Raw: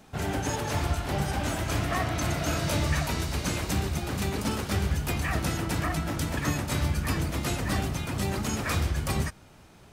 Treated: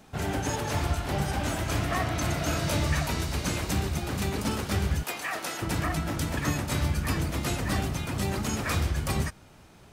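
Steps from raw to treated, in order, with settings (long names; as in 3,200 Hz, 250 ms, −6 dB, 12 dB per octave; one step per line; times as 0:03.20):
0:05.03–0:05.62: high-pass filter 480 Hz 12 dB per octave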